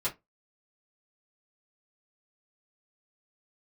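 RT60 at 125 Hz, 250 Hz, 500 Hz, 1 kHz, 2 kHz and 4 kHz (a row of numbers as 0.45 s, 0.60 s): 0.20 s, 0.20 s, 0.20 s, 0.20 s, 0.15 s, 0.15 s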